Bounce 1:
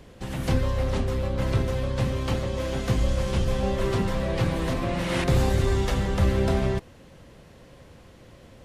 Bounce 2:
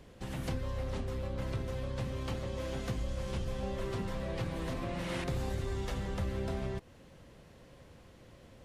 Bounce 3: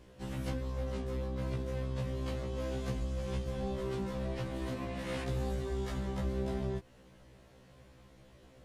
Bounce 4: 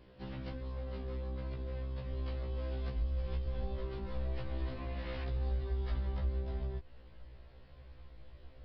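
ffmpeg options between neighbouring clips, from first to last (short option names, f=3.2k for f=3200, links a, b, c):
-af "acompressor=threshold=-28dB:ratio=2.5,volume=-6.5dB"
-af "afftfilt=real='re*1.73*eq(mod(b,3),0)':imag='im*1.73*eq(mod(b,3),0)':win_size=2048:overlap=0.75"
-af "acompressor=threshold=-36dB:ratio=6,asubboost=boost=9:cutoff=56,aresample=11025,aresample=44100,volume=-2dB"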